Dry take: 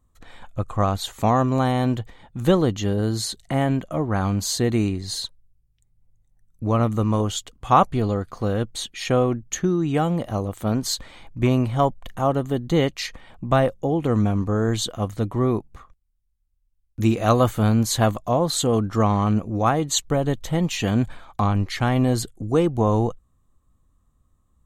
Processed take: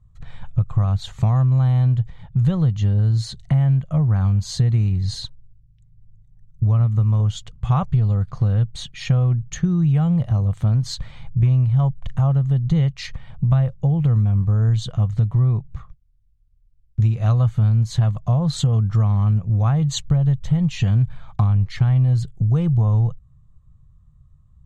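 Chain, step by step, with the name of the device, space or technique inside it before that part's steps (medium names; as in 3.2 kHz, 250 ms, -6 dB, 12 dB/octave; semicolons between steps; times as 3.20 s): jukebox (low-pass 6 kHz 12 dB/octave; resonant low shelf 200 Hz +12.5 dB, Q 3; compression 5:1, threshold -14 dBFS, peak gain reduction 12.5 dB); trim -1.5 dB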